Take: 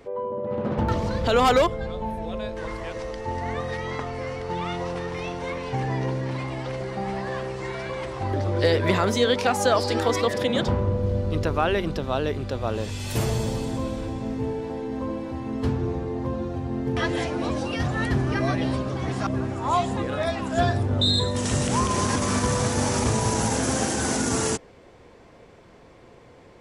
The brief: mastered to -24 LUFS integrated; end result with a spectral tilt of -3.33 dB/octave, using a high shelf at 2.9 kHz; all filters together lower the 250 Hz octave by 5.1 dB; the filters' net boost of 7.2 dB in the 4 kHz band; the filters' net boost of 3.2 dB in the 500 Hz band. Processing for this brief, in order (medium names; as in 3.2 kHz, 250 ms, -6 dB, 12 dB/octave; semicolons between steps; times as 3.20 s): peaking EQ 250 Hz -8.5 dB; peaking EQ 500 Hz +5.5 dB; treble shelf 2.9 kHz +4.5 dB; peaking EQ 4 kHz +5 dB; trim -1 dB